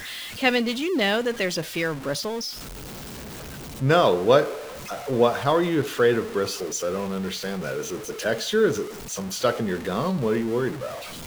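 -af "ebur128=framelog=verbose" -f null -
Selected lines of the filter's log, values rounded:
Integrated loudness:
  I:         -24.2 LUFS
  Threshold: -34.6 LUFS
Loudness range:
  LRA:         4.5 LU
  Threshold: -44.5 LUFS
  LRA low:   -26.5 LUFS
  LRA high:  -22.0 LUFS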